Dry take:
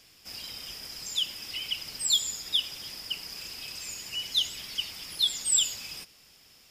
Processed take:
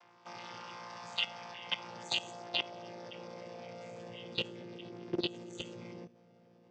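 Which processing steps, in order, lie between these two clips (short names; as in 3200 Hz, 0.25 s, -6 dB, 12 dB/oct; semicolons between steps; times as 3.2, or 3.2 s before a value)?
chord vocoder bare fifth, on A#2; band-pass sweep 1000 Hz -> 380 Hz, 1.01–4.99; de-hum 237.5 Hz, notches 30; level quantiser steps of 16 dB; gain +17 dB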